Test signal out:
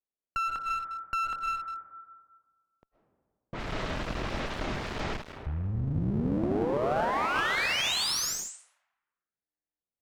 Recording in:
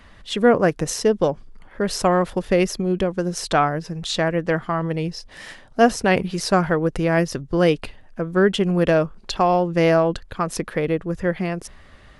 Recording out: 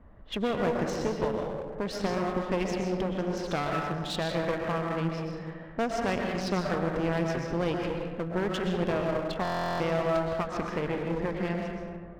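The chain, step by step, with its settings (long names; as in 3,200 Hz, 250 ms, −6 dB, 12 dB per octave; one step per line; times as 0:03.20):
downward compressor 2.5 to 1, threshold −24 dBFS
low-pass filter 8,000 Hz 24 dB per octave
low-pass that shuts in the quiet parts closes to 650 Hz, open at −20 dBFS
comb and all-pass reverb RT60 1.7 s, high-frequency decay 0.45×, pre-delay 85 ms, DRR 0.5 dB
asymmetric clip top −31.5 dBFS
buffer that repeats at 0:09.43, samples 1,024, times 15
level −3.5 dB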